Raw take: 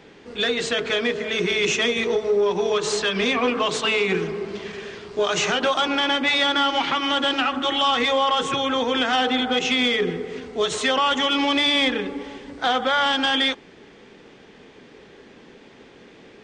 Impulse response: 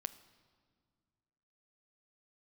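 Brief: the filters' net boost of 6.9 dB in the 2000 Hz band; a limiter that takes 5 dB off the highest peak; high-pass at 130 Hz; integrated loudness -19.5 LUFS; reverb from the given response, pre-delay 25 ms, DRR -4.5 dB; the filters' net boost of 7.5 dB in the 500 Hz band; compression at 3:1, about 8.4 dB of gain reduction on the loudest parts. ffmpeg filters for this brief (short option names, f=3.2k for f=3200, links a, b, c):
-filter_complex "[0:a]highpass=130,equalizer=f=500:t=o:g=8.5,equalizer=f=2k:t=o:g=8,acompressor=threshold=-22dB:ratio=3,alimiter=limit=-15.5dB:level=0:latency=1,asplit=2[a][b];[1:a]atrim=start_sample=2205,adelay=25[c];[b][c]afir=irnorm=-1:irlink=0,volume=6.5dB[d];[a][d]amix=inputs=2:normalize=0,volume=-1dB"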